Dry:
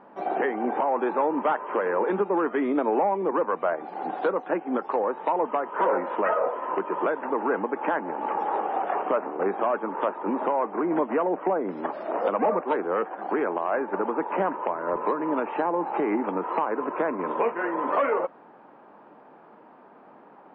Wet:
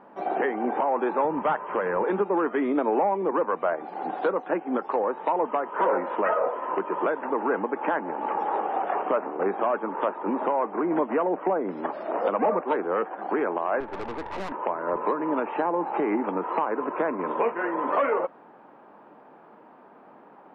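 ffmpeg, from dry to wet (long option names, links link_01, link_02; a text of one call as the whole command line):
ffmpeg -i in.wav -filter_complex "[0:a]asettb=1/sr,asplit=3[link_01][link_02][link_03];[link_01]atrim=end=1.254[link_04];[link_02]atrim=start=1.25:end=2.04,asetpts=PTS-STARTPTS,afade=type=in:duration=0.004:curve=qsin,afade=type=out:start_time=0.786:duration=0.004:curve=qsin,lowshelf=frequency=190:width_type=q:width=1.5:gain=10[link_05];[link_03]atrim=start=2.036[link_06];[link_04][link_05]acrossfade=duration=0.004:curve1=hsin:curve2=qsin[link_07];[link_07][link_06]acrossfade=duration=0.004:curve1=qsin:curve2=hsin,asettb=1/sr,asplit=3[link_08][link_09][link_10];[link_08]atrim=end=13.804[link_11];[link_09]atrim=start=13.8:end=14.52,asetpts=PTS-STARTPTS,afade=type=in:duration=0.004:curve=qsin,afade=type=out:start_time=0.716:duration=0.004:curve=qsin,aeval=exprs='(tanh(31.6*val(0)+0.65)-tanh(0.65))/31.6':channel_layout=same[link_12];[link_10]atrim=start=14.516[link_13];[link_11][link_12]acrossfade=duration=0.004:curve1=hsin:curve2=qsin[link_14];[link_14][link_13]acrossfade=duration=0.004:curve1=qsin:curve2=hsin" out.wav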